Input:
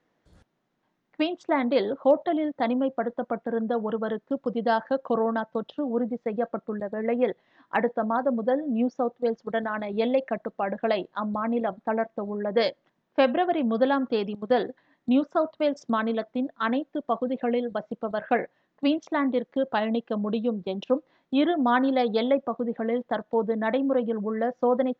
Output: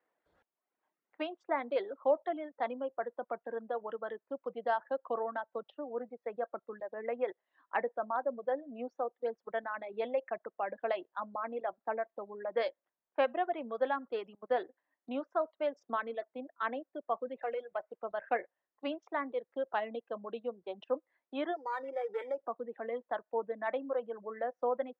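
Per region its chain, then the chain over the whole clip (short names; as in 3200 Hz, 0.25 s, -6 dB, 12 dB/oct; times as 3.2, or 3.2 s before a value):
17.38–18.03 block floating point 7-bit + bell 230 Hz -6 dB 0.97 oct + overdrive pedal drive 11 dB, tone 1600 Hz, clips at -17 dBFS
21.56–22.41 compressor 3:1, threshold -27 dBFS + comb 2.2 ms, depth 96% + decimation joined by straight lines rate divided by 8×
whole clip: three-band isolator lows -19 dB, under 380 Hz, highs -18 dB, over 2900 Hz; reverb removal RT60 0.82 s; gain -6.5 dB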